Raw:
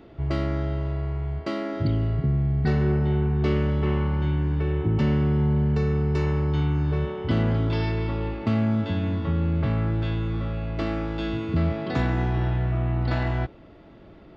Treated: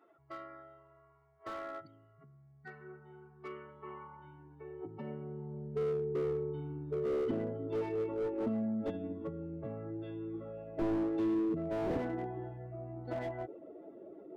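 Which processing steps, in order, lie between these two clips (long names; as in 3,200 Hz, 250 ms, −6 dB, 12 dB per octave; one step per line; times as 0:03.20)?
expanding power law on the bin magnitudes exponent 2
high-pass filter sweep 1,200 Hz → 450 Hz, 0:03.33–0:06.24
slew-rate limiting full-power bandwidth 12 Hz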